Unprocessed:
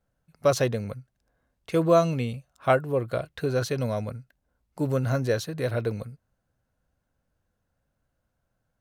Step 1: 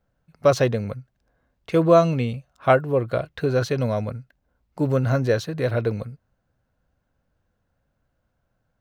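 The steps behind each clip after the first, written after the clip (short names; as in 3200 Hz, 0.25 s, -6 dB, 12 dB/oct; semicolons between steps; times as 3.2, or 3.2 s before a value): bell 11000 Hz -10.5 dB 1.4 oct; gain +4.5 dB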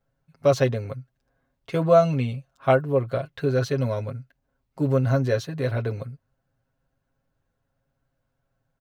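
comb 7.4 ms, depth 72%; gain -4.5 dB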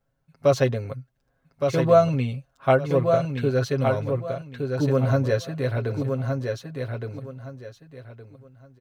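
feedback echo 1.166 s, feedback 25%, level -5 dB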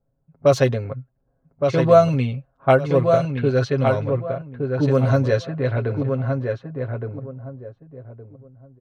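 low-pass opened by the level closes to 650 Hz, open at -15 dBFS; gain +3.5 dB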